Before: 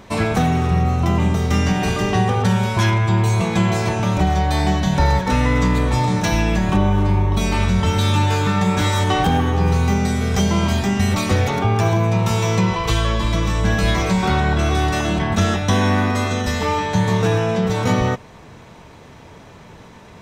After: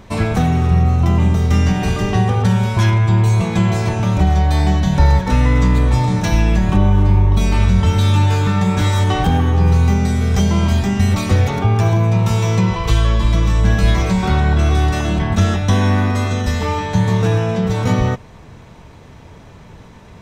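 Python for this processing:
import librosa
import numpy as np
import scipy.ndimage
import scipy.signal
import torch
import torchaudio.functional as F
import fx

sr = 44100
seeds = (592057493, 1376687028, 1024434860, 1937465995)

y = fx.low_shelf(x, sr, hz=130.0, db=10.0)
y = y * 10.0 ** (-1.5 / 20.0)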